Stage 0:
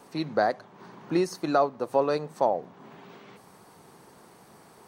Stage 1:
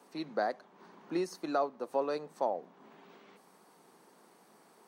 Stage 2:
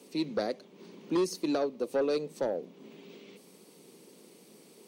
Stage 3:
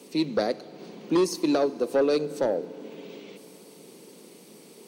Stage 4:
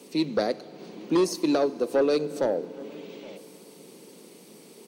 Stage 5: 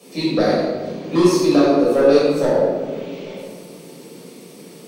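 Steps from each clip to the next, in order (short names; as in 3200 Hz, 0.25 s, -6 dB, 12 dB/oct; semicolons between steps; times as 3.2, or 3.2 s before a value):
HPF 190 Hz 24 dB/oct; gain -8 dB
band shelf 1100 Hz -15 dB; sine folder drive 5 dB, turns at -23 dBFS
FDN reverb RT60 4 s, high-frequency decay 0.75×, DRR 16.5 dB; gain +6 dB
outdoor echo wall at 140 m, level -21 dB
shoebox room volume 860 m³, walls mixed, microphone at 6 m; gain -2 dB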